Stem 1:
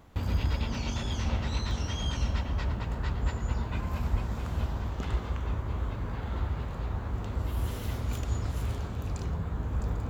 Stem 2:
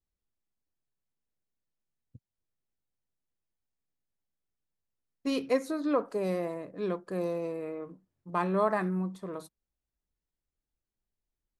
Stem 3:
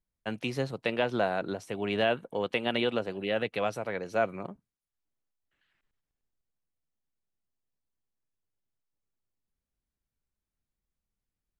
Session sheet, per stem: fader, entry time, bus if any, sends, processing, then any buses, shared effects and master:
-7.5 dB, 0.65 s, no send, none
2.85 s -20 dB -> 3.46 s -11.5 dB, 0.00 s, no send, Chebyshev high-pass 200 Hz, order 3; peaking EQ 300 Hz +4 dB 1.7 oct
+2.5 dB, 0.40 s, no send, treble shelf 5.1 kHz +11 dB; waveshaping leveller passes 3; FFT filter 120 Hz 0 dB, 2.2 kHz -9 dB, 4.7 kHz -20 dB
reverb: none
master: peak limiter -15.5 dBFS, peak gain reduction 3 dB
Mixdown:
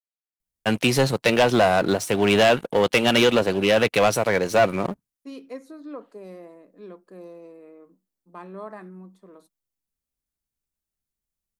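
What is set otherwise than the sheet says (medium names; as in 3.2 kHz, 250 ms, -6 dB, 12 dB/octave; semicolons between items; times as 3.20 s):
stem 1: muted; stem 3: missing FFT filter 120 Hz 0 dB, 2.2 kHz -9 dB, 4.7 kHz -20 dB; master: missing peak limiter -15.5 dBFS, peak gain reduction 3 dB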